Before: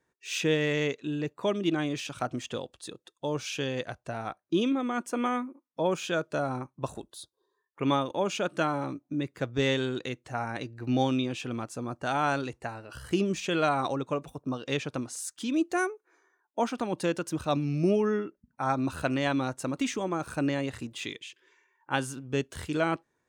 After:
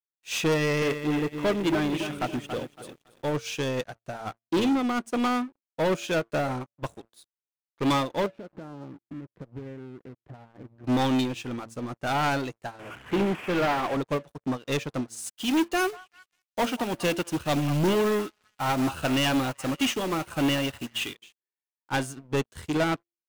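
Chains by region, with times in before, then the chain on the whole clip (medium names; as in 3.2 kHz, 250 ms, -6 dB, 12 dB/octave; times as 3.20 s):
0.54–3.36 s: high-order bell 5.4 kHz -8 dB 1.2 oct + bit-crushed delay 279 ms, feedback 55%, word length 9-bit, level -8 dB
8.26–10.84 s: low-pass 1.9 kHz 24 dB/octave + tilt shelf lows +9 dB, about 830 Hz + compression, threshold -37 dBFS
12.79–13.97 s: one-bit delta coder 16 kbps, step -32.5 dBFS + high-pass 120 Hz
15.26–21.15 s: peaking EQ 2.9 kHz +12.5 dB 0.26 oct + companded quantiser 4-bit + repeats whose band climbs or falls 192 ms, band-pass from 1 kHz, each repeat 0.7 oct, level -11 dB
whole clip: de-hum 113.9 Hz, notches 6; waveshaping leveller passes 5; upward expansion 2.5:1, over -28 dBFS; trim -7 dB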